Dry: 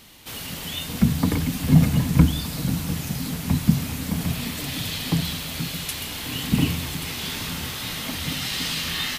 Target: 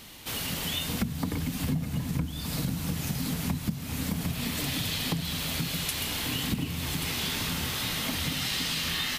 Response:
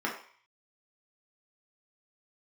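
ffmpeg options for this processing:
-af "acompressor=threshold=0.0398:ratio=10,volume=1.19"

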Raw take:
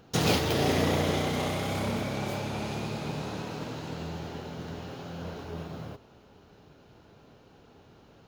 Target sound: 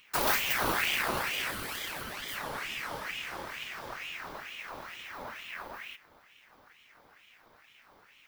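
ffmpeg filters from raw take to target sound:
-filter_complex "[0:a]asettb=1/sr,asplit=3[s0][s1][s2];[s0]atrim=end=1.514[s3];[s1]atrim=start=1.51:end=2.36,asetpts=PTS-STARTPTS,afade=t=in:d=0.004:c=qsin,afade=t=out:st=0.846:d=0.004:c=qsin,highpass=400[s4];[s2]atrim=start=2.356[s5];[s3][s4]acrossfade=d=0.004:c1=hsin:c2=qsin[s6];[s6][s5]acrossfade=d=0.004:c1=qsin:c2=hsin,aexciter=amount=4.1:drive=5.5:freq=9300,aeval=exprs='val(0)*sin(2*PI*1700*n/s+1700*0.6/2.2*sin(2*PI*2.2*n/s))':c=same,volume=0.841"

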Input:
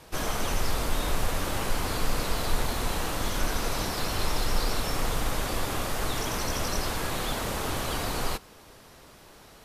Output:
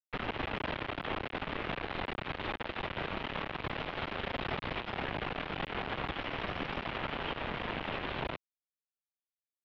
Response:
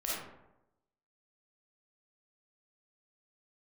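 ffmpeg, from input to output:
-af "acompressor=threshold=0.0316:ratio=6,acrusher=bits=4:mix=0:aa=0.000001,highpass=f=340:t=q:w=0.5412,highpass=f=340:t=q:w=1.307,lowpass=f=3500:t=q:w=0.5176,lowpass=f=3500:t=q:w=0.7071,lowpass=f=3500:t=q:w=1.932,afreqshift=-350"

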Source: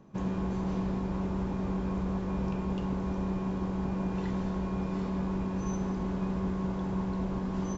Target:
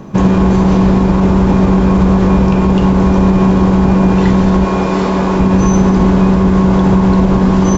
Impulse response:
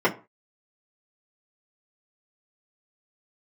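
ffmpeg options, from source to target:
-filter_complex "[0:a]asettb=1/sr,asplit=3[s0][s1][s2];[s0]atrim=end=4.644[s3];[s1]atrim=start=4.64:end=5.4,asetpts=PTS-STARTPTS,afade=t=in:d=0.004:c=qsin,afade=t=out:st=0.756:d=0.004:c=qsin,bass=f=250:g=-10,treble=f=4000:g=1[s4];[s2]atrim=start=5.396[s5];[s3][s4]acrossfade=d=0.004:c1=hsin:c2=qsin[s6];[s6][s5]acrossfade=d=0.004:c1=qsin:c2=hsin,alimiter=level_in=18.8:limit=0.891:release=50:level=0:latency=1,volume=0.891"

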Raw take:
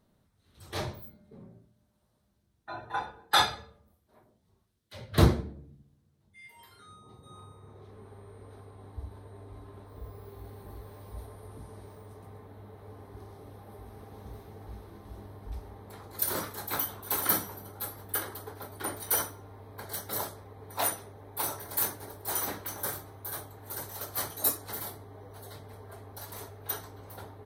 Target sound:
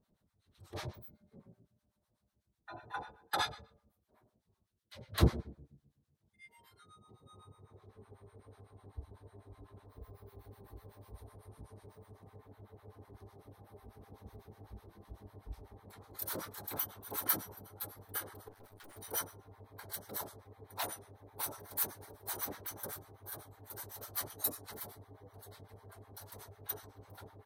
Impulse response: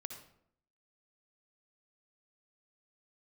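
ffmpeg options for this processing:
-filter_complex "[0:a]asettb=1/sr,asplit=3[s0][s1][s2];[s0]atrim=end=18.484[s3];[s1]atrim=start=18.48:end=18.96,asetpts=PTS-STARTPTS,afade=t=in:d=0.004:c=qsin,afade=t=out:st=0.476:d=0.004:c=qsin,aeval=exprs='(tanh(178*val(0)+0.7)-tanh(0.7))/178':c=same[s4];[s2]atrim=start=18.956[s5];[s3][s4]acrossfade=d=0.004:c1=hsin:c2=qsin[s6];[s6][s5]acrossfade=d=0.004:c1=qsin:c2=hsin,acrossover=split=790[s7][s8];[s7]aeval=exprs='val(0)*(1-1/2+1/2*cos(2*PI*8*n/s))':c=same[s9];[s8]aeval=exprs='val(0)*(1-1/2-1/2*cos(2*PI*8*n/s))':c=same[s10];[s9][s10]amix=inputs=2:normalize=0,volume=0.668"

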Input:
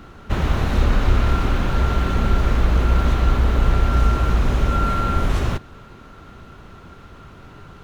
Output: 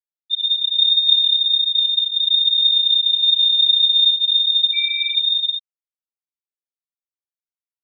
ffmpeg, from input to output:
-af "aecho=1:1:619|1238|1857:0.158|0.0586|0.0217,lowpass=f=3100:t=q:w=0.5098,lowpass=f=3100:t=q:w=0.6013,lowpass=f=3100:t=q:w=0.9,lowpass=f=3100:t=q:w=2.563,afreqshift=-3700,afftfilt=real='re*gte(hypot(re,im),0.631)':imag='im*gte(hypot(re,im),0.631)':win_size=1024:overlap=0.75"

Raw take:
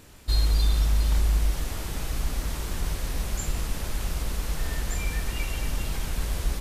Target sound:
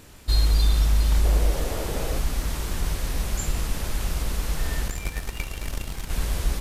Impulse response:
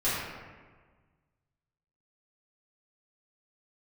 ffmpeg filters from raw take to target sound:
-filter_complex "[0:a]asettb=1/sr,asplit=3[s0][s1][s2];[s0]atrim=end=1.244[s3];[s1]atrim=start=1.24:end=2.2,asetpts=PTS-STARTPTS,afade=t=in:d=0.004:c=qsin,afade=t=out:st=0.956:d=0.004:c=qsin,equalizer=f=510:w=1.3:g=11.5[s4];[s2]atrim=start=2.196[s5];[s3][s4]acrossfade=d=0.004:c1=hsin:c2=qsin[s6];[s6][s5]acrossfade=d=0.004:c1=qsin:c2=hsin,asettb=1/sr,asplit=3[s7][s8][s9];[s7]atrim=end=4.884[s10];[s8]atrim=start=4.88:end=6.1,asetpts=PTS-STARTPTS,afade=t=in:d=0.004:c=qsin,afade=t=out:st=1.216:d=0.004:c=qsin,aeval=exprs='0.158*(cos(1*acos(clip(val(0)/0.158,-1,1)))-cos(1*PI/2))+0.0355*(cos(3*acos(clip(val(0)/0.158,-1,1)))-cos(3*PI/2))':c=same[s11];[s9]atrim=start=6.096[s12];[s10][s11]acrossfade=d=0.004:c1=hsin:c2=qsin[s13];[s13][s12]acrossfade=d=0.004:c1=qsin:c2=hsin,volume=1.33"

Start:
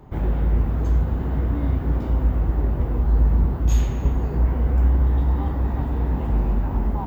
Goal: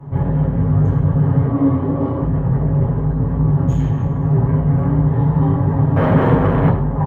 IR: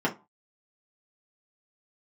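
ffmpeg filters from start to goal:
-filter_complex "[0:a]equalizer=f=260:t=o:w=0.25:g=-5.5,bandreject=f=470:w=12,aecho=1:1:7.1:0.73,asettb=1/sr,asplit=3[s0][s1][s2];[s0]atrim=end=3.874[s3];[s1]atrim=start=3.87:end=4.31,asetpts=PTS-STARTPTS,afade=t=in:d=0.004:c=qsin,afade=t=out:st=0.436:d=0.004:c=qsin,acompressor=threshold=0.0708:ratio=6[s4];[s2]atrim=start=4.306[s5];[s3][s4]acrossfade=d=0.004:c1=hsin:c2=qsin[s6];[s6][s5]acrossfade=d=0.004:c1=qsin:c2=hsin,flanger=delay=18.5:depth=5.5:speed=2.6,asoftclip=type=tanh:threshold=0.0668,asettb=1/sr,asplit=3[s7][s8][s9];[s7]atrim=end=1.464[s10];[s8]atrim=start=1.46:end=2.22,asetpts=PTS-STARTPTS,afade=t=in:d=0.004:c=qsin,afade=t=out:st=0.756:d=0.004:c=qsin,highpass=110,equalizer=f=160:t=q:w=4:g=-10,equalizer=f=310:t=q:w=4:g=7,equalizer=f=570:t=q:w=4:g=5,equalizer=f=1100:t=q:w=4:g=6,equalizer=f=1600:t=q:w=4:g=-4,lowpass=f=5500:w=0.5412,lowpass=f=5500:w=1.3066[s11];[s9]atrim=start=2.216[s12];[s10][s11]acrossfade=d=0.004:c1=hsin:c2=qsin[s13];[s13][s12]acrossfade=d=0.004:c1=qsin:c2=hsin,asettb=1/sr,asplit=3[s14][s15][s16];[s14]atrim=end=5.964[s17];[s15]atrim=start=5.96:end=6.69,asetpts=PTS-STARTPTS,afade=t=in:d=0.004:c=qsin,afade=t=out:st=0.726:d=0.004:c=qsin,aeval=exprs='0.0668*sin(PI/2*3.55*val(0)/0.0668)':c=same[s18];[s16]atrim=start=6.686[s19];[s17][s18]acrossfade=d=0.004:c1=hsin:c2=qsin[s20];[s20][s19]acrossfade=d=0.004:c1=qsin:c2=hsin,asplit=2[s21][s22];[s22]adelay=105,volume=0.2,highshelf=f=4000:g=-2.36[s23];[s21][s23]amix=inputs=2:normalize=0[s24];[1:a]atrim=start_sample=2205,asetrate=26019,aresample=44100[s25];[s24][s25]afir=irnorm=-1:irlink=0,volume=0.562"

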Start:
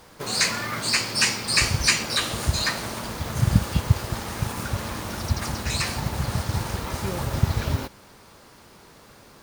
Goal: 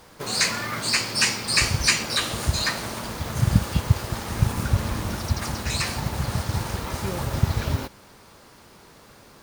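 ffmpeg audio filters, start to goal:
-filter_complex "[0:a]asettb=1/sr,asplit=3[s0][s1][s2];[s0]atrim=end=4.304[s3];[s1]atrim=start=4.3:end=5.17,asetpts=PTS-STARTPTS,afade=t=in:d=0.004:c=qsin,afade=t=out:st=0.866:d=0.004:c=qsin,lowshelf=f=200:g=9[s4];[s2]atrim=start=5.166[s5];[s3][s4]acrossfade=d=0.004:c1=hsin:c2=qsin[s6];[s6][s5]acrossfade=d=0.004:c1=qsin:c2=hsin"

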